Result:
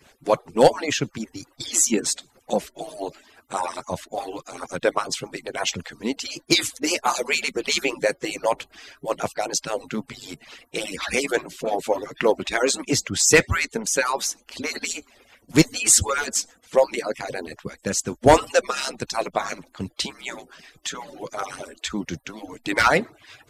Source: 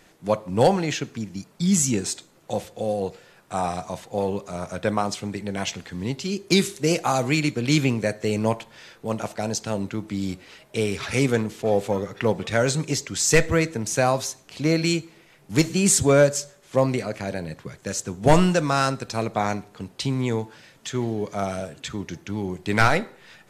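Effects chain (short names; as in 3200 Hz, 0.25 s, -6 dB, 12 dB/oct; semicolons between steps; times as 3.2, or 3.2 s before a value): median-filter separation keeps percussive; gain +4.5 dB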